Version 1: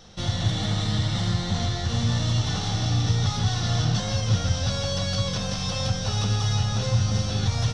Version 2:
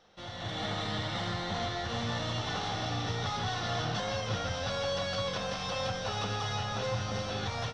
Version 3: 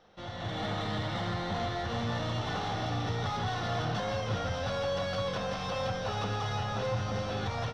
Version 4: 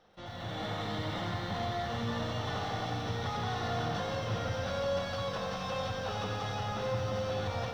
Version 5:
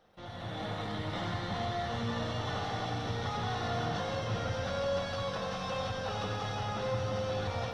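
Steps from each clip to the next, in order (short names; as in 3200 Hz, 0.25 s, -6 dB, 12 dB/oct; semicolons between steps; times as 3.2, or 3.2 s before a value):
tone controls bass -15 dB, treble -14 dB; AGC gain up to 8.5 dB; gain -8.5 dB
high shelf 2600 Hz -8.5 dB; in parallel at -7.5 dB: overloaded stage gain 36 dB
lo-fi delay 90 ms, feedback 80%, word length 10-bit, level -8.5 dB; gain -3 dB
Opus 32 kbps 48000 Hz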